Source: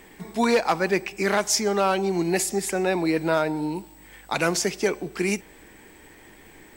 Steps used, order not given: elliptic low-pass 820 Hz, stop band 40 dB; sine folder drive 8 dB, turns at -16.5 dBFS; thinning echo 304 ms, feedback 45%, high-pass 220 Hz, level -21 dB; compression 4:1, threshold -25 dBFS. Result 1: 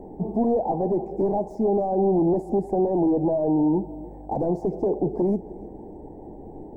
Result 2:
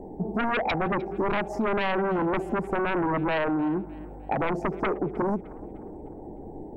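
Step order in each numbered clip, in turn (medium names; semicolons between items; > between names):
compression > thinning echo > sine folder > elliptic low-pass; elliptic low-pass > sine folder > compression > thinning echo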